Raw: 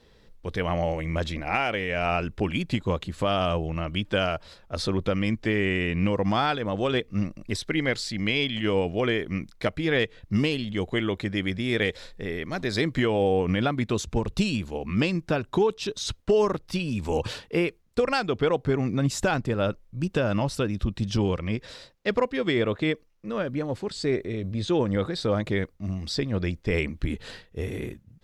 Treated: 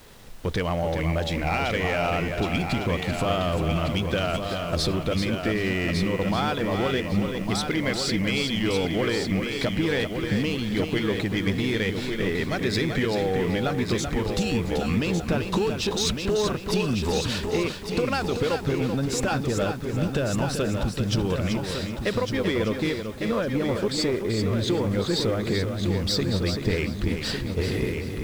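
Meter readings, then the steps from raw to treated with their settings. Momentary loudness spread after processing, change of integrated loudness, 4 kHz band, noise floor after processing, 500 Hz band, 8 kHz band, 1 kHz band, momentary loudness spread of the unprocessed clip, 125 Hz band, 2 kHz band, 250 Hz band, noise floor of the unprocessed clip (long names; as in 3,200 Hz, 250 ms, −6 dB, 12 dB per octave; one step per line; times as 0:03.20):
3 LU, +1.5 dB, +3.0 dB, −32 dBFS, +0.5 dB, +6.0 dB, +0.5 dB, 7 LU, +2.5 dB, +0.5 dB, +2.0 dB, −57 dBFS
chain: downward compressor, threshold −31 dBFS, peak gain reduction 13 dB
leveller curve on the samples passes 2
background noise pink −53 dBFS
on a send: echo machine with several playback heads 385 ms, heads first and third, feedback 42%, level −7 dB
on the sum: level +2 dB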